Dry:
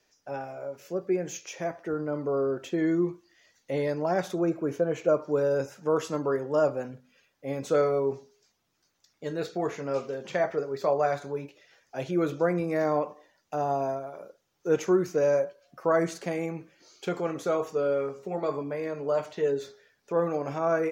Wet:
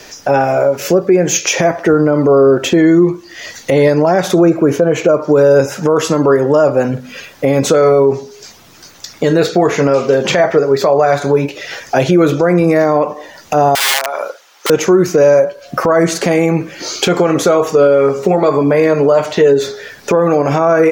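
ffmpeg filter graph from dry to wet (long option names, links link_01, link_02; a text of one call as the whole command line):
ffmpeg -i in.wav -filter_complex "[0:a]asettb=1/sr,asplit=3[link_01][link_02][link_03];[link_01]atrim=end=13.754[link_04];[link_02]atrim=start=13.75:end=14.7,asetpts=PTS-STARTPTS,afade=type=in:duration=0.004:curve=qsin,afade=type=out:start_time=0.946:duration=0.004:curve=qsin,highshelf=frequency=6400:gain=-8,aeval=exprs='(mod(33.5*val(0)+1,2)-1)/33.5':channel_layout=same,highpass=910[link_05];[link_03]atrim=start=14.696[link_06];[link_04][link_05]acrossfade=duration=0.004:curve1=hsin:curve2=qsin[link_07];[link_07][link_06]acrossfade=duration=0.004:curve1=qsin:curve2=hsin,acompressor=threshold=-47dB:ratio=2.5,alimiter=level_in=35dB:limit=-1dB:release=50:level=0:latency=1,volume=-1dB" out.wav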